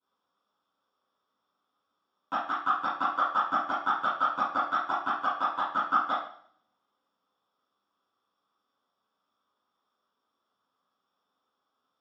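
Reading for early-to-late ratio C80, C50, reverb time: 6.5 dB, 1.5 dB, 0.55 s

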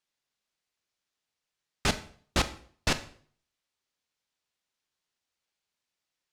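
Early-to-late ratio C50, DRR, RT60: 14.5 dB, 11.0 dB, 0.50 s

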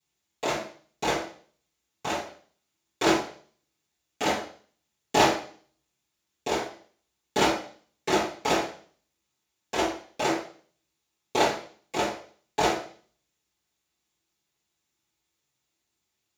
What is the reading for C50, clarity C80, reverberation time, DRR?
5.5 dB, 10.0 dB, 0.45 s, −11.5 dB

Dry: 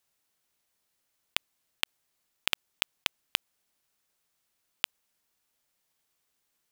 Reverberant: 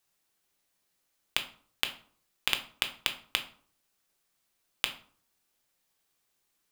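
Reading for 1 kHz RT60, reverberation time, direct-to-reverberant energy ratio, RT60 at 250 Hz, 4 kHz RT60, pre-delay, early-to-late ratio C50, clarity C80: 0.50 s, 0.50 s, 5.0 dB, 0.55 s, 0.35 s, 3 ms, 12.5 dB, 17.0 dB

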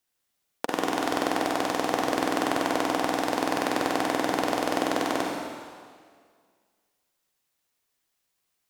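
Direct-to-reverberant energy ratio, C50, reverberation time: −1.5 dB, −0.5 dB, 1.9 s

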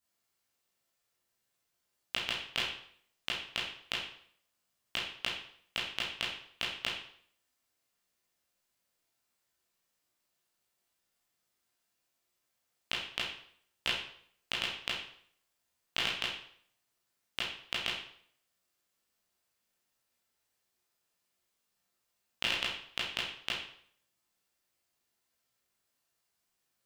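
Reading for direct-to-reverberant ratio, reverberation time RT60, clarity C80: −6.5 dB, 0.60 s, 7.0 dB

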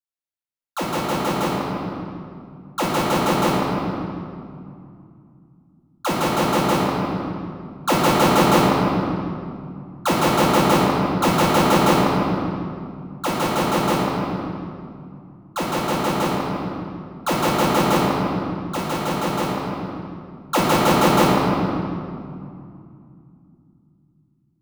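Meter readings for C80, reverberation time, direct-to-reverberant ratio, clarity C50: 0.0 dB, 2.5 s, −9.0 dB, −2.0 dB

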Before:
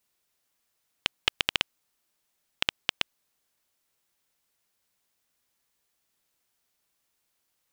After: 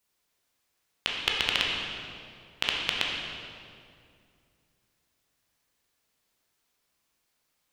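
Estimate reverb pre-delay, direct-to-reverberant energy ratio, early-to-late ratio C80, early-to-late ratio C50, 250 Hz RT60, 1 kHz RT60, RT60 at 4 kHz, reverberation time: 12 ms, −2.5 dB, 2.0 dB, 0.5 dB, 2.9 s, 2.1 s, 1.7 s, 2.3 s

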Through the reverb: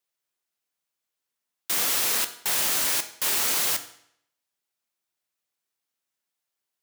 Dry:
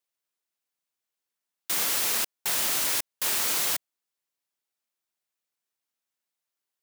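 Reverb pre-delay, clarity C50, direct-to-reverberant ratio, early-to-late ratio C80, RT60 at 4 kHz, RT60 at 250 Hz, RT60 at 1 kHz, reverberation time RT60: 8 ms, 13.0 dB, 8.5 dB, 15.5 dB, 0.65 s, 0.70 s, 0.70 s, 0.70 s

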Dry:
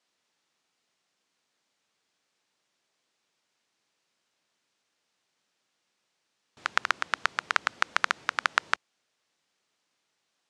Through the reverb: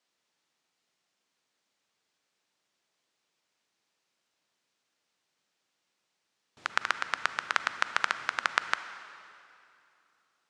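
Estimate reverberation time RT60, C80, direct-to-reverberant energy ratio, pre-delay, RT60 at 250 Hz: 2.8 s, 11.5 dB, 10.5 dB, 36 ms, 3.2 s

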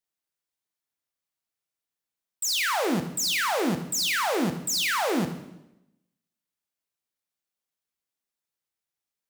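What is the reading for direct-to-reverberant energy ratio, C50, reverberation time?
6.5 dB, 9.5 dB, 0.90 s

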